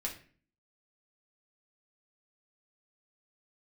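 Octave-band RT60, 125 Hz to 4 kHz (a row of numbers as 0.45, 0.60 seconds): 0.60, 0.65, 0.45, 0.40, 0.45, 0.35 seconds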